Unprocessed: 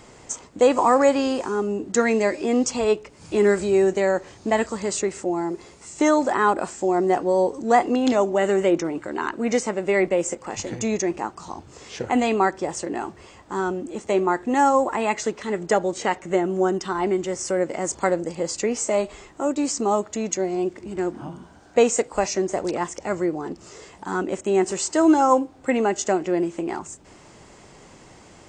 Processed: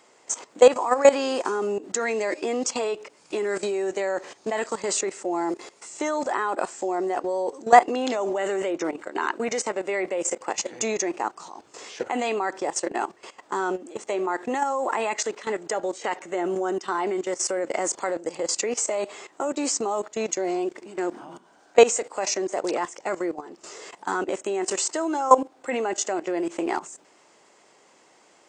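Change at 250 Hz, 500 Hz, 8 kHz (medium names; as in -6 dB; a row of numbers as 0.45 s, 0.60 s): -7.5 dB, -2.5 dB, +1.0 dB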